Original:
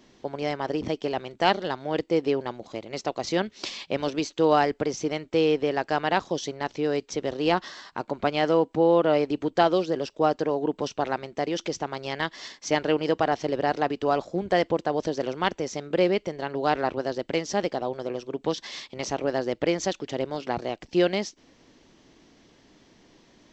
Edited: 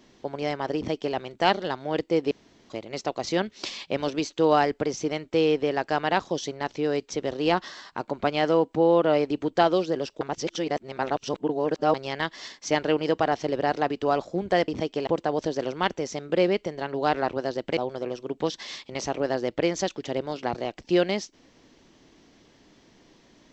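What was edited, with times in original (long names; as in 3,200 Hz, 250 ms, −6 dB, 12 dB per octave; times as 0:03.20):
0:00.76–0:01.15: duplicate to 0:14.68
0:02.31–0:02.70: fill with room tone
0:10.21–0:11.94: reverse
0:17.38–0:17.81: remove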